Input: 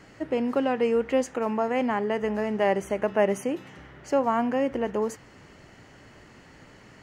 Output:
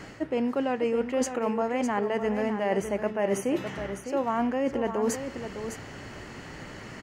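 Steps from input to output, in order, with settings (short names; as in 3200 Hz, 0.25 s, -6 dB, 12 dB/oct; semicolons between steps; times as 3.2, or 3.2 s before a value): reverse; compressor 6:1, threshold -33 dBFS, peak gain reduction 15.5 dB; reverse; echo 0.606 s -9 dB; gain +8.5 dB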